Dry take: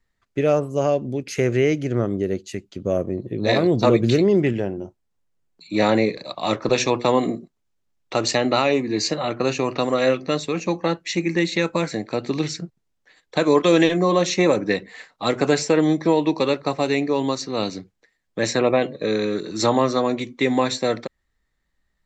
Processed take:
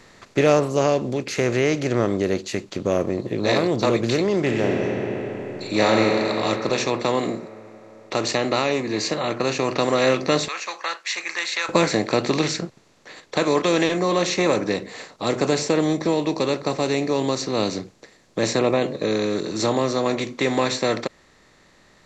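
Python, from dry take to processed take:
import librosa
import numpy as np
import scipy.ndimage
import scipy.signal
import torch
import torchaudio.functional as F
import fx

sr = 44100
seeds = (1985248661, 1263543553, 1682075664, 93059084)

y = fx.reverb_throw(x, sr, start_s=4.42, length_s=1.94, rt60_s=2.8, drr_db=2.5)
y = fx.ladder_highpass(y, sr, hz=1100.0, resonance_pct=40, at=(10.48, 11.69))
y = fx.peak_eq(y, sr, hz=1800.0, db=-8.5, octaves=2.6, at=(14.69, 20.06))
y = fx.bin_compress(y, sr, power=0.6)
y = fx.low_shelf(y, sr, hz=470.0, db=-3.0)
y = fx.rider(y, sr, range_db=10, speed_s=2.0)
y = y * librosa.db_to_amplitude(-3.5)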